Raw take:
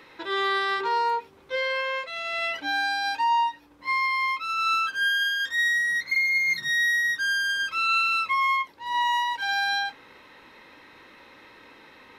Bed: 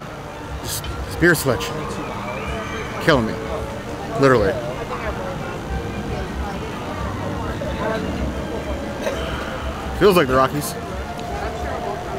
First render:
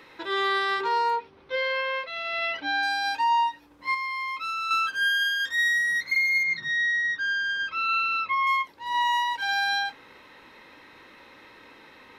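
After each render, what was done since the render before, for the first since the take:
0:01.16–0:02.83: Savitzky-Golay smoothing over 15 samples
0:03.94–0:04.71: downward compressor, threshold −27 dBFS
0:06.43–0:08.47: high-frequency loss of the air 180 metres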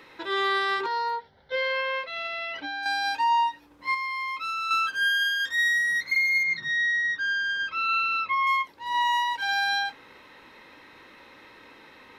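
0:00.86–0:01.52: phaser with its sweep stopped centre 1,700 Hz, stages 8
0:02.26–0:02.86: downward compressor, threshold −29 dBFS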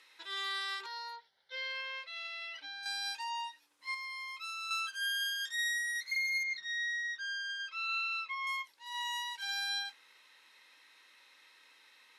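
low-pass filter 11,000 Hz 24 dB per octave
first difference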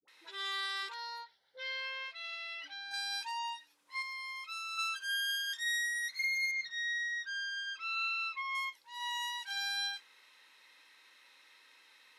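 all-pass dispersion highs, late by 82 ms, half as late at 550 Hz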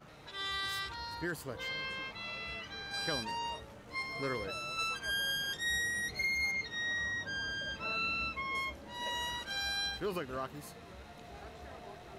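mix in bed −23.5 dB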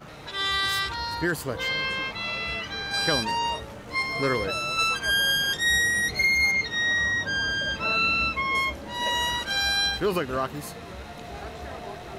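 level +11.5 dB

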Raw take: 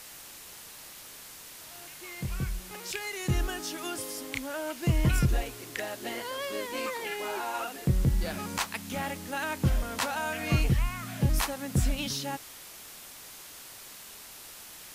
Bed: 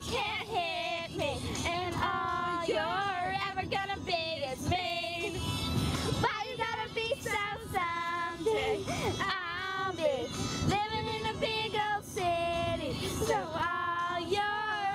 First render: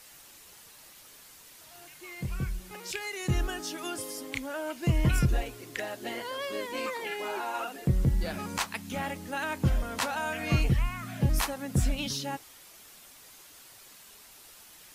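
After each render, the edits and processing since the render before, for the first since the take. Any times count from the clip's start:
broadband denoise 7 dB, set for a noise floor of −47 dBFS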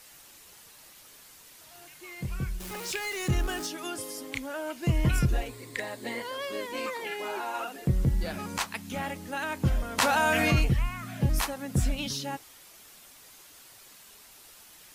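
0:02.60–0:03.67: converter with a step at zero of −36.5 dBFS
0:05.48–0:06.22: EQ curve with evenly spaced ripples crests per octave 0.98, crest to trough 8 dB
0:09.98–0:10.65: envelope flattener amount 70%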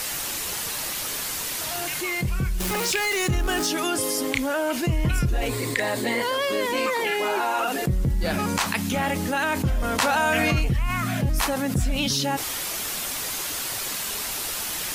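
envelope flattener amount 70%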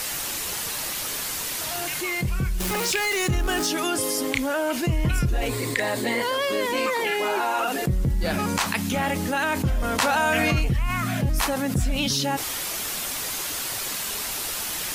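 no processing that can be heard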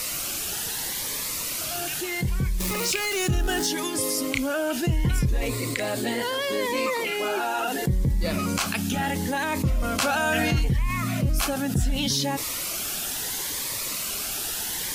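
phaser whose notches keep moving one way rising 0.72 Hz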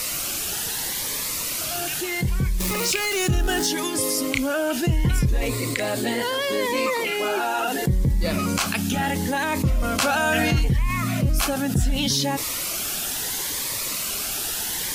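level +2.5 dB

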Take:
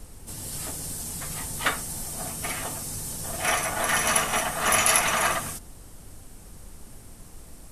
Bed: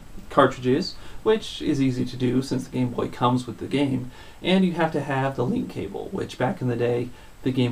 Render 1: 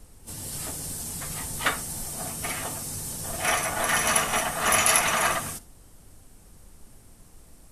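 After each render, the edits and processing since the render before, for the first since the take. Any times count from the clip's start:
noise reduction from a noise print 6 dB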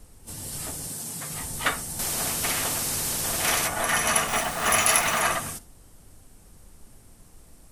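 0:00.87–0:01.33: high-pass filter 110 Hz 24 dB per octave
0:01.99–0:03.68: every bin compressed towards the loudest bin 2 to 1
0:04.28–0:05.21: hold until the input has moved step −29.5 dBFS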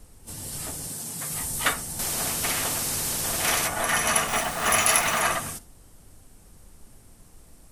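0:01.18–0:01.72: high-shelf EQ 9,100 Hz → 4,600 Hz +6 dB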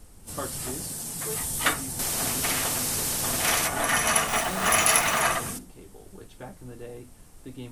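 mix in bed −18 dB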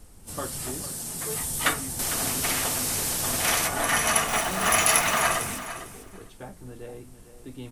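repeating echo 452 ms, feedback 15%, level −12.5 dB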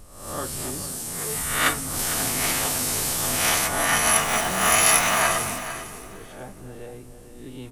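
peak hold with a rise ahead of every peak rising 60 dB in 0.69 s
delay that swaps between a low-pass and a high-pass 269 ms, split 1,200 Hz, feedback 50%, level −12.5 dB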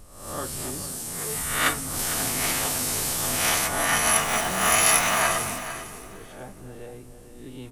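level −1.5 dB

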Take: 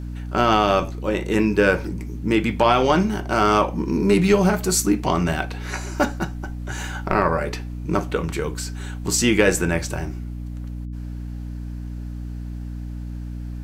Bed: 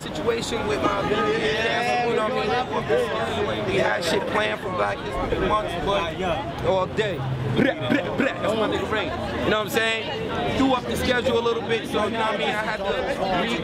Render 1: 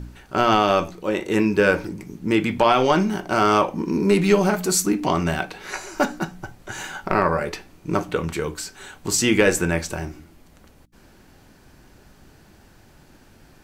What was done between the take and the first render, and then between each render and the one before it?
hum removal 60 Hz, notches 5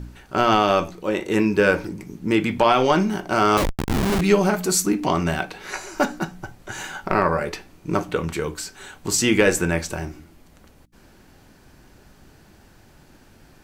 0:03.57–0:04.21: comparator with hysteresis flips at −19.5 dBFS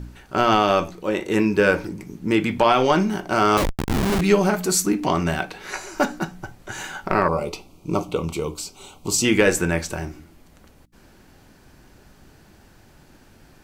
0:07.28–0:09.25: Butterworth band-reject 1,700 Hz, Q 1.6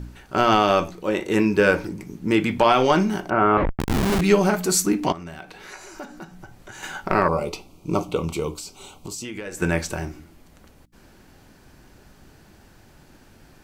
0:03.30–0:03.80: low-pass filter 2,100 Hz 24 dB per octave
0:05.12–0:06.83: downward compressor 2.5 to 1, threshold −40 dBFS
0:08.56–0:09.62: downward compressor, threshold −31 dBFS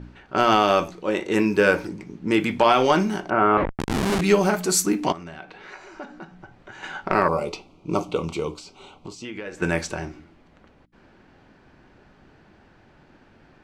low-pass that shuts in the quiet parts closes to 2,700 Hz, open at −16 dBFS
low-shelf EQ 110 Hz −8.5 dB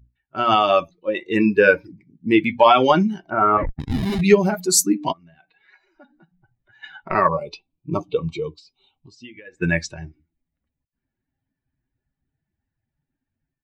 spectral dynamics exaggerated over time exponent 2
automatic gain control gain up to 10.5 dB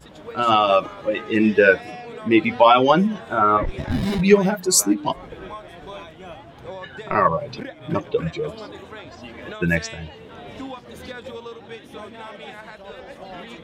mix in bed −14 dB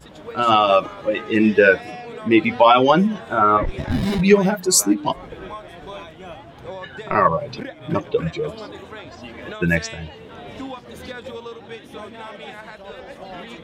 level +1.5 dB
brickwall limiter −2 dBFS, peak gain reduction 2 dB

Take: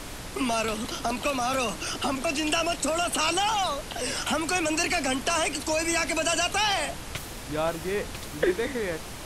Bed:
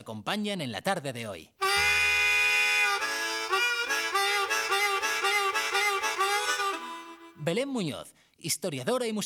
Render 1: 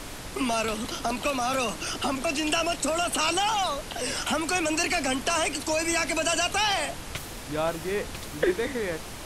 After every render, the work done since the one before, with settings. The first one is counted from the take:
hum removal 60 Hz, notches 3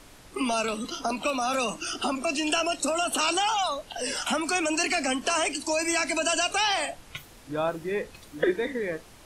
noise reduction from a noise print 12 dB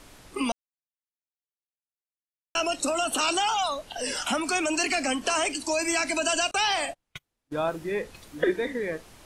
0:00.52–0:02.55: silence
0:06.51–0:07.70: noise gate −37 dBFS, range −33 dB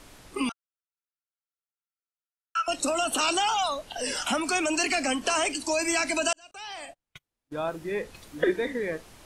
0:00.49–0:02.68: four-pole ladder high-pass 1,300 Hz, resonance 85%
0:06.33–0:08.20: fade in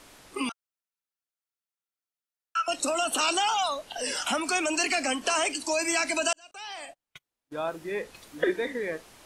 low-shelf EQ 180 Hz −10 dB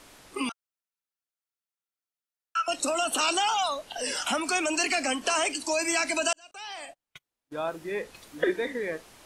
no processing that can be heard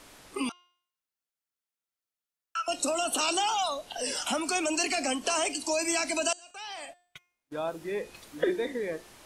hum removal 354.5 Hz, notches 23
dynamic equaliser 1,700 Hz, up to −6 dB, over −42 dBFS, Q 1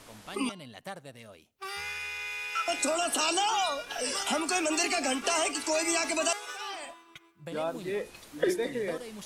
mix in bed −12.5 dB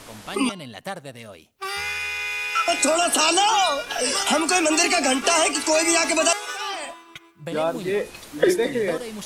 level +9 dB

